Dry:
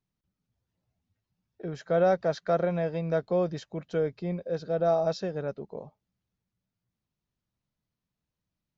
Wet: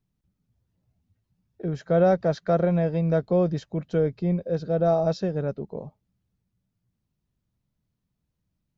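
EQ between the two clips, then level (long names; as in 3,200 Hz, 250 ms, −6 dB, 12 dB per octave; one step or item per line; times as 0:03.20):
low-shelf EQ 360 Hz +10.5 dB
0.0 dB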